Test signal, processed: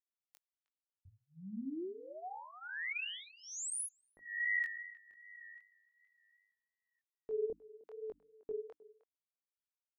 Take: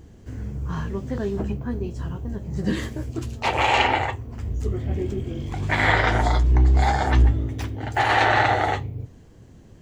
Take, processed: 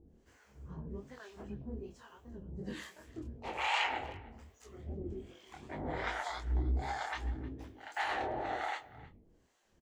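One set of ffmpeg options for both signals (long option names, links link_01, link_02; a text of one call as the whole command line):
ffmpeg -i in.wav -filter_complex "[0:a]equalizer=frequency=110:width=3.3:gain=-14.5,bandreject=frequency=50:width_type=h:width=6,bandreject=frequency=100:width_type=h:width=6,bandreject=frequency=150:width_type=h:width=6,bandreject=frequency=200:width_type=h:width=6,bandreject=frequency=250:width_type=h:width=6,bandreject=frequency=300:width_type=h:width=6,acrossover=split=690[link_01][link_02];[link_01]aeval=exprs='val(0)*(1-1/2+1/2*cos(2*PI*1.2*n/s))':channel_layout=same[link_03];[link_02]aeval=exprs='val(0)*(1-1/2-1/2*cos(2*PI*1.2*n/s))':channel_layout=same[link_04];[link_03][link_04]amix=inputs=2:normalize=0,flanger=delay=20:depth=6.8:speed=2.6,asplit=2[link_05][link_06];[link_06]adelay=310,highpass=300,lowpass=3400,asoftclip=type=hard:threshold=-18.5dB,volume=-19dB[link_07];[link_05][link_07]amix=inputs=2:normalize=0,volume=-7.5dB" out.wav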